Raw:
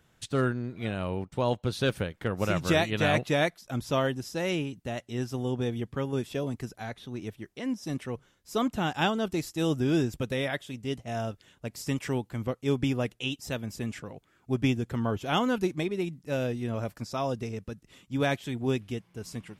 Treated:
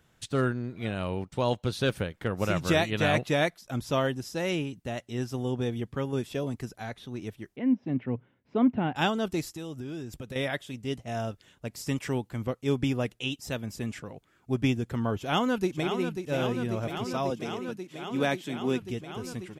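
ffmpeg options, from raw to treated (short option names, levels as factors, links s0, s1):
-filter_complex "[0:a]asettb=1/sr,asplit=3[s0][s1][s2];[s0]atrim=end=0.964[s3];[s1]atrim=start=0.96:end=1.71,asetpts=PTS-STARTPTS,afade=t=in:d=0.004:c=qsin,afade=t=out:st=0.746:d=0.004:c=qsin,equalizer=f=5200:t=o:w=2.2:g=4[s4];[s2]atrim=start=1.706[s5];[s3][s4]acrossfade=d=0.004:c1=hsin:c2=qsin[s6];[s6][s5]acrossfade=d=0.004:c1=qsin:c2=hsin,asettb=1/sr,asplit=3[s7][s8][s9];[s7]atrim=end=7.564[s10];[s8]atrim=start=7.56:end=8.96,asetpts=PTS-STARTPTS,afade=t=in:d=0.004:c=qsin,afade=t=out:st=1.396:d=0.004:c=qsin,highpass=100,equalizer=f=120:t=q:w=4:g=7,equalizer=f=250:t=q:w=4:g=8,equalizer=f=1200:t=q:w=4:g=-7,equalizer=f=1700:t=q:w=4:g=-4,lowpass=f=2400:w=0.5412,lowpass=f=2400:w=1.3066[s11];[s9]atrim=start=8.956[s12];[s10][s11]acrossfade=d=0.004:c1=hsin:c2=qsin[s13];[s13][s12]acrossfade=d=0.004:c1=qsin:c2=hsin,asettb=1/sr,asplit=3[s14][s15][s16];[s14]atrim=end=9.474[s17];[s15]atrim=start=9.47:end=10.36,asetpts=PTS-STARTPTS,afade=t=in:d=0.004:c=qsin,afade=t=out:st=0.886:d=0.004:c=qsin,acompressor=threshold=0.0158:ratio=4:attack=3.2:release=140:knee=1:detection=peak[s18];[s16]atrim=start=10.356[s19];[s17][s18]acrossfade=d=0.004:c1=hsin:c2=qsin[s20];[s20][s19]acrossfade=d=0.004:c1=qsin:c2=hsin,asplit=2[s21][s22];[s22]afade=t=in:st=15.18:d=0.01,afade=t=out:st=16.21:d=0.01,aecho=0:1:540|1080|1620|2160|2700|3240|3780|4320|4860|5400|5940|6480:0.421697|0.358442|0.304676|0.258974|0.220128|0.187109|0.159043|0.135186|0.114908|0.0976721|0.0830212|0.0705681[s23];[s21][s23]amix=inputs=2:normalize=0,asettb=1/sr,asplit=3[s24][s25][s26];[s24]atrim=end=17.304[s27];[s25]atrim=start=17.3:end=18.82,asetpts=PTS-STARTPTS,afade=t=in:d=0.004:c=qsin,afade=t=out:st=1.516:d=0.004:c=qsin,highpass=f=150:w=0.5412,highpass=f=150:w=1.3066[s28];[s26]atrim=start=18.816[s29];[s27][s28]acrossfade=d=0.004:c1=hsin:c2=qsin[s30];[s30][s29]acrossfade=d=0.004:c1=qsin:c2=hsin"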